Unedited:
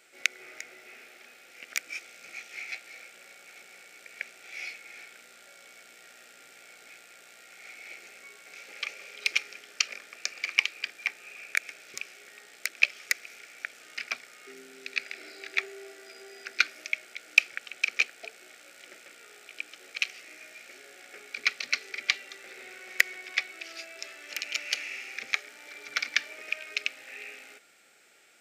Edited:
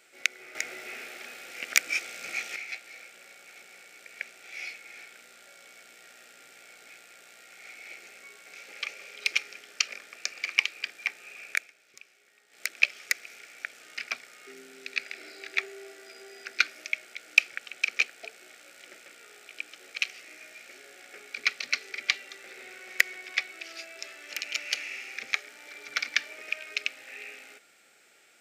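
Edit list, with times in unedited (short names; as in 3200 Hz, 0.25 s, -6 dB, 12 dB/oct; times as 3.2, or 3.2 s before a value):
0.55–2.56 gain +9 dB
11.55–12.63 dip -13 dB, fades 0.14 s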